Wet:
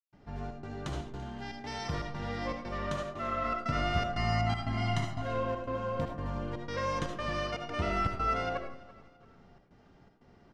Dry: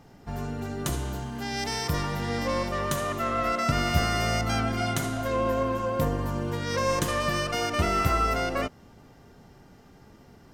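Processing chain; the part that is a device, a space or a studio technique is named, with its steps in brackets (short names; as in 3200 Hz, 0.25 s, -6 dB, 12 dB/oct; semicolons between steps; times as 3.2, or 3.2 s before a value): LPF 4600 Hz 12 dB/oct; 4.17–5.22 comb 1 ms, depth 83%; high shelf 9500 Hz -6 dB; trance gate with a delay (step gate ".xxx.xxx" 119 bpm -60 dB; feedback echo 0.337 s, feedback 39%, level -20.5 dB); digital reverb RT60 0.45 s, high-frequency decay 0.4×, pre-delay 35 ms, DRR 3.5 dB; gain -7.5 dB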